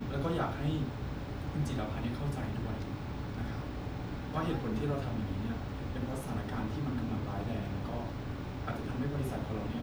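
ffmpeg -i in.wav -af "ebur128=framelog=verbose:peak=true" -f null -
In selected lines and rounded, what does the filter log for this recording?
Integrated loudness:
  I:         -36.6 LUFS
  Threshold: -46.6 LUFS
Loudness range:
  LRA:         1.4 LU
  Threshold: -56.8 LUFS
  LRA low:   -37.4 LUFS
  LRA high:  -36.0 LUFS
True peak:
  Peak:      -20.3 dBFS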